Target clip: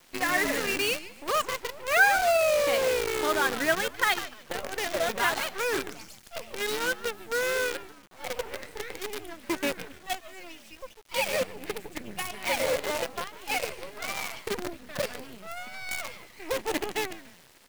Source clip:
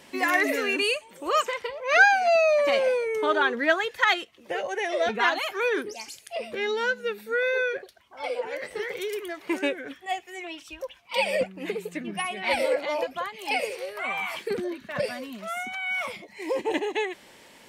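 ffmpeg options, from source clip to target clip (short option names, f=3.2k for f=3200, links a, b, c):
-filter_complex "[0:a]asplit=4[a][b][c][d];[b]adelay=147,afreqshift=-100,volume=-11dB[e];[c]adelay=294,afreqshift=-200,volume=-21.2dB[f];[d]adelay=441,afreqshift=-300,volume=-31.3dB[g];[a][e][f][g]amix=inputs=4:normalize=0,acrusher=bits=5:dc=4:mix=0:aa=0.000001,volume=-3.5dB"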